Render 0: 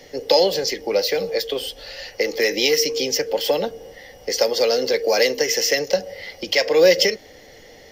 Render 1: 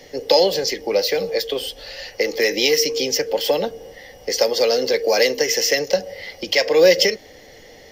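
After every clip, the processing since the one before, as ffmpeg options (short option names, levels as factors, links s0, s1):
-af "bandreject=f=1400:w=27,volume=1.12"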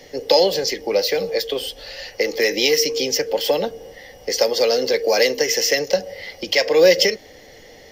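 -af anull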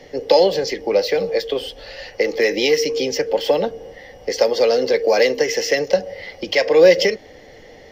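-af "lowpass=f=2300:p=1,volume=1.33"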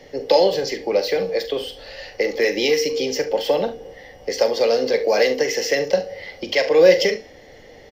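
-filter_complex "[0:a]highshelf=f=12000:g=3,bandreject=f=245.9:t=h:w=4,bandreject=f=491.8:t=h:w=4,bandreject=f=737.7:t=h:w=4,bandreject=f=983.6:t=h:w=4,bandreject=f=1229.5:t=h:w=4,bandreject=f=1475.4:t=h:w=4,bandreject=f=1721.3:t=h:w=4,bandreject=f=1967.2:t=h:w=4,bandreject=f=2213.1:t=h:w=4,bandreject=f=2459:t=h:w=4,bandreject=f=2704.9:t=h:w=4,bandreject=f=2950.8:t=h:w=4,bandreject=f=3196.7:t=h:w=4,bandreject=f=3442.6:t=h:w=4,bandreject=f=3688.5:t=h:w=4,bandreject=f=3934.4:t=h:w=4,bandreject=f=4180.3:t=h:w=4,bandreject=f=4426.2:t=h:w=4,bandreject=f=4672.1:t=h:w=4,bandreject=f=4918:t=h:w=4,bandreject=f=5163.9:t=h:w=4,bandreject=f=5409.8:t=h:w=4,bandreject=f=5655.7:t=h:w=4,bandreject=f=5901.6:t=h:w=4,bandreject=f=6147.5:t=h:w=4,bandreject=f=6393.4:t=h:w=4,bandreject=f=6639.3:t=h:w=4,bandreject=f=6885.2:t=h:w=4,bandreject=f=7131.1:t=h:w=4,bandreject=f=7377:t=h:w=4,bandreject=f=7622.9:t=h:w=4,bandreject=f=7868.8:t=h:w=4,bandreject=f=8114.7:t=h:w=4,bandreject=f=8360.6:t=h:w=4,bandreject=f=8606.5:t=h:w=4,bandreject=f=8852.4:t=h:w=4,bandreject=f=9098.3:t=h:w=4,bandreject=f=9344.2:t=h:w=4,bandreject=f=9590.1:t=h:w=4,bandreject=f=9836:t=h:w=4,asplit=2[s0][s1];[s1]aecho=0:1:43|70:0.282|0.168[s2];[s0][s2]amix=inputs=2:normalize=0,volume=0.794"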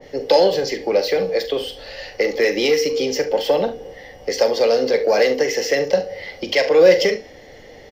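-filter_complex "[0:a]asplit=2[s0][s1];[s1]asoftclip=type=tanh:threshold=0.2,volume=0.501[s2];[s0][s2]amix=inputs=2:normalize=0,adynamicequalizer=threshold=0.0447:dfrequency=1900:dqfactor=0.7:tfrequency=1900:tqfactor=0.7:attack=5:release=100:ratio=0.375:range=1.5:mode=cutabove:tftype=highshelf,volume=0.891"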